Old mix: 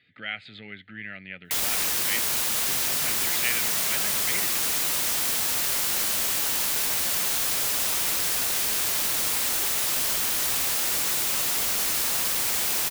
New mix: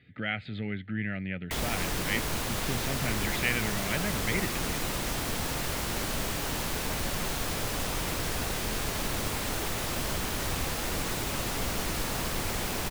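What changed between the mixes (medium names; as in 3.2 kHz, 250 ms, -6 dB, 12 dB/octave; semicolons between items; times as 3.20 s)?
speech +3.5 dB; master: add tilt EQ -3.5 dB/octave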